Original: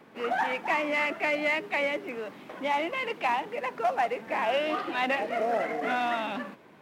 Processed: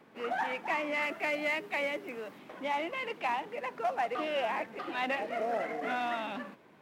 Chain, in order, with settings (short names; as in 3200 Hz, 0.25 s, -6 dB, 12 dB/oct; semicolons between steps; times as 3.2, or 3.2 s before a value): 1.02–2.39 high shelf 8200 Hz +7.5 dB; 4.15–4.79 reverse; gain -5 dB